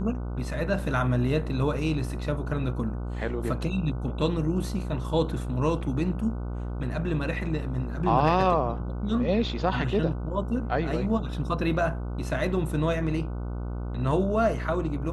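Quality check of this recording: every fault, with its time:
buzz 60 Hz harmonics 25 -32 dBFS

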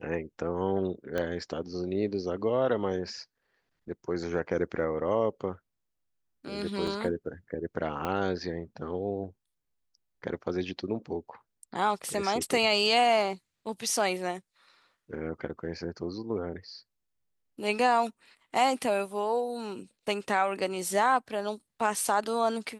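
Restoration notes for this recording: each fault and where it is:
1.18 s: pop -18 dBFS
6.87 s: dropout 4.3 ms
8.05 s: pop -18 dBFS

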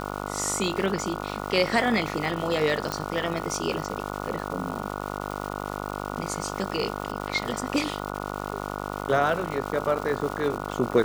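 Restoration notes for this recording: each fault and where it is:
buzz 50 Hz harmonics 29 -33 dBFS
crackle 430 per s -33 dBFS
2.92 s: pop -13 dBFS

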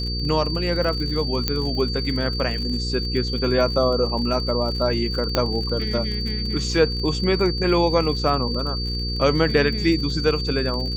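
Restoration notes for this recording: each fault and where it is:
crackle 49 per s -29 dBFS
hum 60 Hz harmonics 8 -27 dBFS
whine 4.6 kHz -28 dBFS
1.48 s: pop -6 dBFS
5.35 s: pop -6 dBFS

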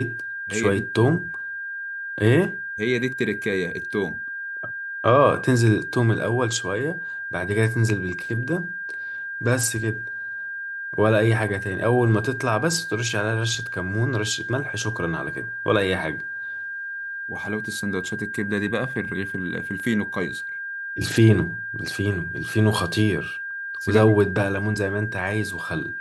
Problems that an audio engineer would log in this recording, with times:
whine 1.6 kHz -29 dBFS

